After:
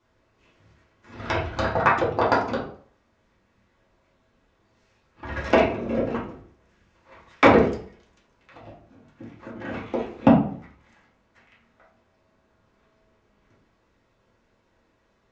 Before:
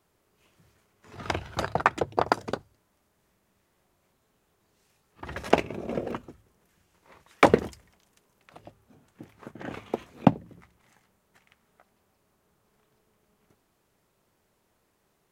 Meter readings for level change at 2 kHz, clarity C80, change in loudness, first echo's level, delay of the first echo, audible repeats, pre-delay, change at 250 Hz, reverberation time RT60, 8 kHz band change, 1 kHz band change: +5.5 dB, 11.0 dB, +5.0 dB, none, none, none, 3 ms, +6.5 dB, 0.50 s, n/a, +4.5 dB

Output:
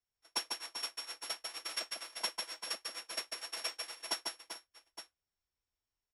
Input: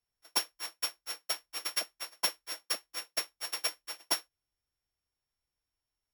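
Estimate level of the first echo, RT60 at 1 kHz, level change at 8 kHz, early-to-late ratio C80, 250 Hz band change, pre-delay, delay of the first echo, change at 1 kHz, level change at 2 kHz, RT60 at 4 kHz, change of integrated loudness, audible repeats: -4.0 dB, none, -5.0 dB, none, -3.0 dB, none, 0.147 s, -3.0 dB, -3.0 dB, none, -5.0 dB, 4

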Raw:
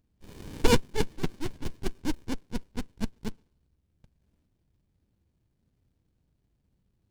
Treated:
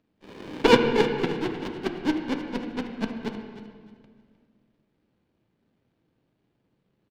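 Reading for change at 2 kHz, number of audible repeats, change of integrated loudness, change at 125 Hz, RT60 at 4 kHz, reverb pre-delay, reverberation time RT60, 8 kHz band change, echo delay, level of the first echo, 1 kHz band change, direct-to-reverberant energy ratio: +8.5 dB, 2, +6.5 dB, -1.0 dB, 1.7 s, 3 ms, 1.8 s, n/a, 0.308 s, -13.5 dB, +8.5 dB, 3.5 dB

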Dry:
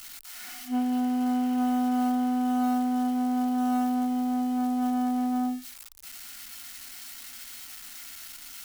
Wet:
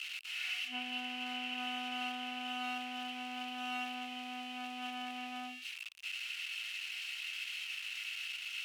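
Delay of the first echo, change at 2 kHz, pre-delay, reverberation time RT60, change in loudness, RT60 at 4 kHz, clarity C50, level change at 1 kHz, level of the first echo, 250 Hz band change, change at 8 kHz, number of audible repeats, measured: none, +6.5 dB, none, none, -12.5 dB, none, none, -12.0 dB, none, -22.5 dB, -10.5 dB, none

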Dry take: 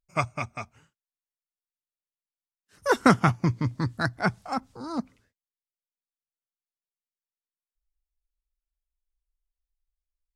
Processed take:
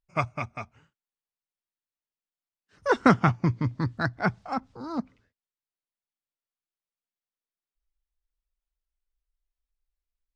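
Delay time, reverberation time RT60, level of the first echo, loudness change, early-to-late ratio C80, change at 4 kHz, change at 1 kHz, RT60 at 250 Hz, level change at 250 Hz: none, none, none, -0.5 dB, none, -4.0 dB, -0.5 dB, none, 0.0 dB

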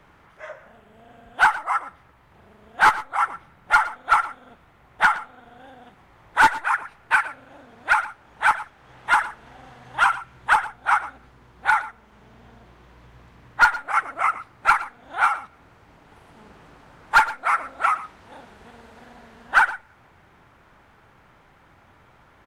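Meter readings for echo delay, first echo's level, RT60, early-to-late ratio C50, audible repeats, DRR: 0.115 s, -16.0 dB, none, none, 1, none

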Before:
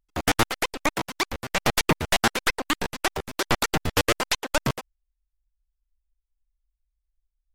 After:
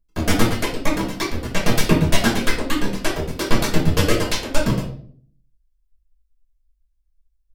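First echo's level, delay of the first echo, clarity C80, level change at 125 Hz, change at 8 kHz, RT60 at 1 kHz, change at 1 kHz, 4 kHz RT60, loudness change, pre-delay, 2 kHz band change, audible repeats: none, none, 11.5 dB, +10.0 dB, +1.5 dB, 0.45 s, 0.0 dB, 0.40 s, +4.0 dB, 3 ms, +1.0 dB, none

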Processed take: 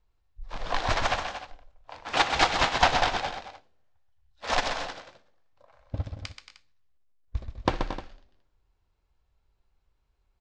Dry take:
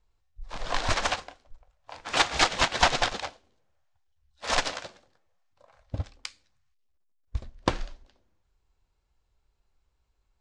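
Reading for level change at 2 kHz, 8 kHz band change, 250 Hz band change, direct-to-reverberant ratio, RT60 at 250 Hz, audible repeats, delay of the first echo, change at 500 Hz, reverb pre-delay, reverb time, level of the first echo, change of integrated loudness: +0.5 dB, -5.0 dB, +1.0 dB, none, none, 4, 61 ms, +1.5 dB, none, none, -18.0 dB, -0.5 dB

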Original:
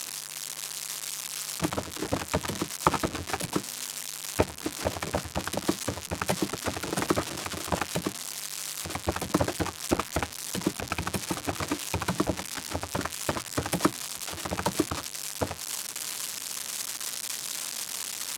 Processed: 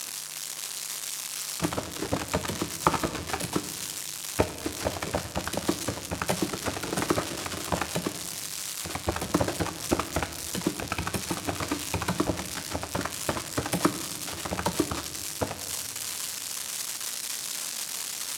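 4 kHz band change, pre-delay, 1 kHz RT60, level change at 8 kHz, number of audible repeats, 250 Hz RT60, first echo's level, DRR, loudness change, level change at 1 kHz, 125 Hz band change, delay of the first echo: +1.0 dB, 17 ms, 1.4 s, +1.0 dB, none, 2.2 s, none, 9.5 dB, +0.5 dB, +0.5 dB, +0.5 dB, none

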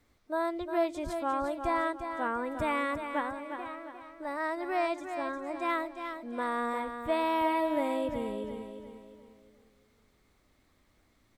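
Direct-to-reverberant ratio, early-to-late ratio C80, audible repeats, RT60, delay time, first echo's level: none, none, 4, none, 0.354 s, -8.0 dB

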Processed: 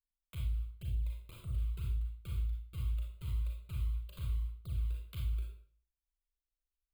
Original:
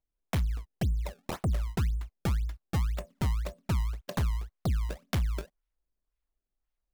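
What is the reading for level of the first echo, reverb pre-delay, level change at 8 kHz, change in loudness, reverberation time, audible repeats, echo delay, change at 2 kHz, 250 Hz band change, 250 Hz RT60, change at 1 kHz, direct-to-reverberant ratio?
none, 31 ms, -15.5 dB, -6.5 dB, 0.45 s, none, none, -17.0 dB, -19.5 dB, 0.55 s, -22.5 dB, -2.0 dB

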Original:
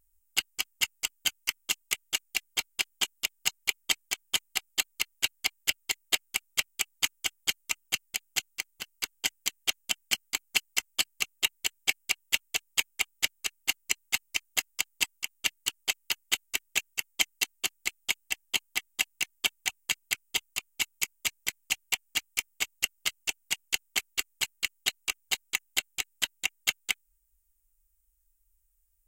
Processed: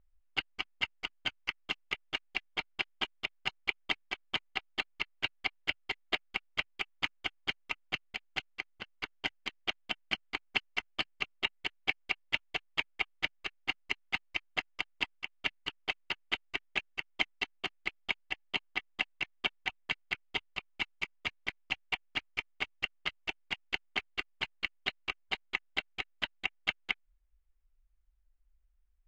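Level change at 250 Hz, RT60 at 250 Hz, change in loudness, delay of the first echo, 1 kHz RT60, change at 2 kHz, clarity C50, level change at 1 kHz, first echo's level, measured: +2.5 dB, none, -6.0 dB, none, none, -3.0 dB, none, +1.0 dB, none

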